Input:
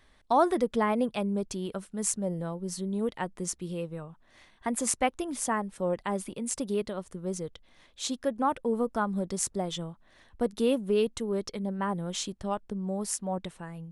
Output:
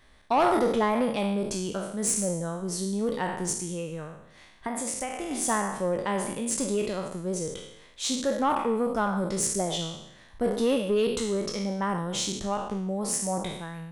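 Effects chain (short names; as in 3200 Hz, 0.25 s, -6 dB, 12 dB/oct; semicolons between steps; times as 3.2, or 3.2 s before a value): spectral trails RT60 0.81 s; 3.52–5.31 compressor 12:1, threshold -30 dBFS, peak gain reduction 12.5 dB; soft clip -18 dBFS, distortion -16 dB; gain +2 dB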